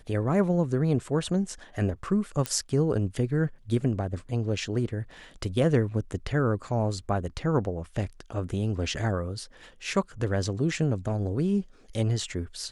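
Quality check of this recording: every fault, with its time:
2.46 s: pop -13 dBFS

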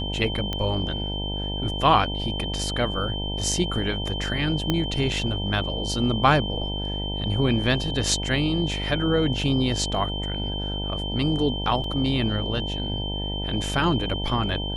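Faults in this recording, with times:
buzz 50 Hz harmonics 19 -30 dBFS
whine 3.1 kHz -31 dBFS
0.53 s: pop -14 dBFS
4.70 s: pop -9 dBFS
11.84 s: dropout 3 ms

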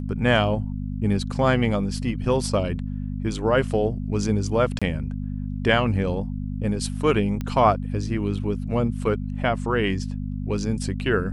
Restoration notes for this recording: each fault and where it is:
hum 50 Hz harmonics 5 -29 dBFS
4.79–4.82 s: dropout 26 ms
7.41 s: pop -17 dBFS

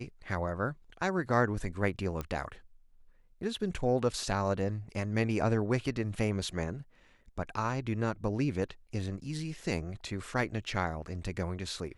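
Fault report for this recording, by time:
2.21 s: pop -22 dBFS

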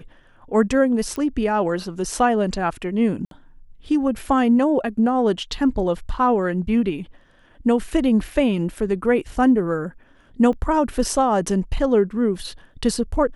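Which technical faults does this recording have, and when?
1.16 s: pop -17 dBFS
3.25–3.31 s: dropout 62 ms
10.53 s: dropout 2.1 ms

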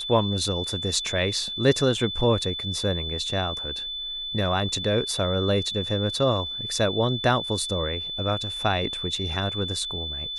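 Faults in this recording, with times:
whine 3.5 kHz -30 dBFS

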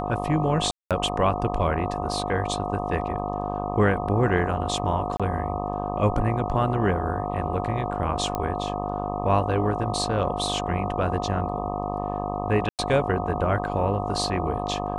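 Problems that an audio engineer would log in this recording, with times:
buzz 50 Hz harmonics 25 -30 dBFS
whine 720 Hz -31 dBFS
0.71–0.91 s: dropout 197 ms
5.17–5.20 s: dropout 26 ms
8.35 s: pop -14 dBFS
12.69–12.79 s: dropout 98 ms

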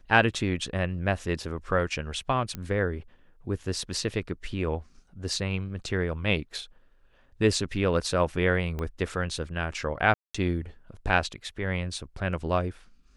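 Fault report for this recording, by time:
2.55 s: pop -19 dBFS
8.79 s: pop -20 dBFS
10.14–10.35 s: dropout 205 ms

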